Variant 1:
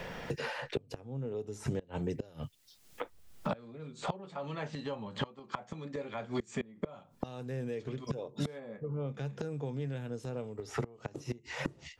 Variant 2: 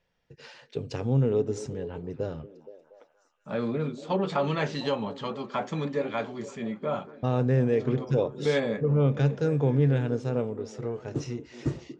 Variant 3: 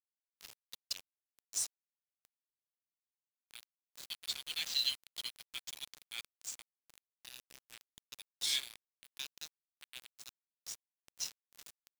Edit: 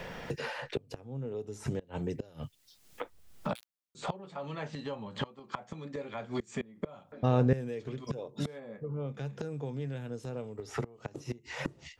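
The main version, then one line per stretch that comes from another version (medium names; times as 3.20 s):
1
3.55–3.95 s: from 3
7.12–7.53 s: from 2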